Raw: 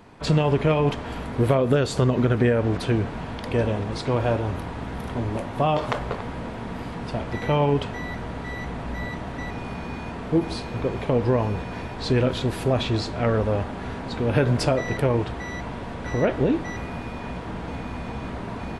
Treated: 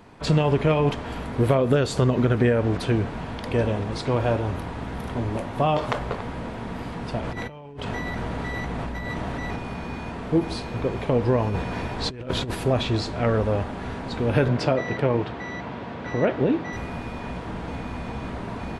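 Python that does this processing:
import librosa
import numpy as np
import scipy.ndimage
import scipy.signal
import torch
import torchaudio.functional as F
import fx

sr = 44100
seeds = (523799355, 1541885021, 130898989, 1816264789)

y = fx.over_compress(x, sr, threshold_db=-32.0, ratio=-1.0, at=(7.2, 9.56))
y = fx.over_compress(y, sr, threshold_db=-26.0, ratio=-0.5, at=(11.47, 12.55))
y = fx.bandpass_edges(y, sr, low_hz=110.0, high_hz=4500.0, at=(14.48, 16.73))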